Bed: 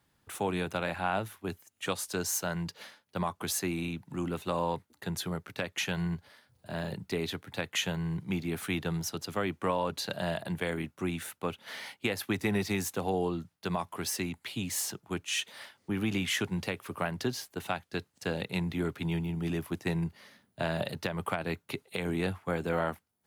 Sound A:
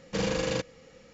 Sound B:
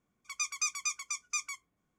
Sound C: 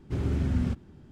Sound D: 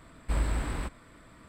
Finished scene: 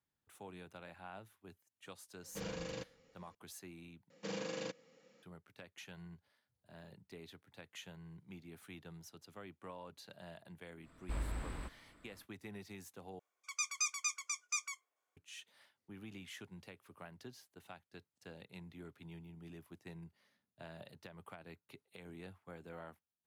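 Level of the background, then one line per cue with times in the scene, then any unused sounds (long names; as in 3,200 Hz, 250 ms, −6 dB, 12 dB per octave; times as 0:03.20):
bed −20 dB
0:02.22: mix in A −15 dB
0:04.10: overwrite with A −12.5 dB + high-pass filter 160 Hz 24 dB per octave
0:10.80: mix in D −11 dB, fades 0.10 s
0:13.19: overwrite with B −3.5 dB + high-pass filter 500 Hz 24 dB per octave
not used: C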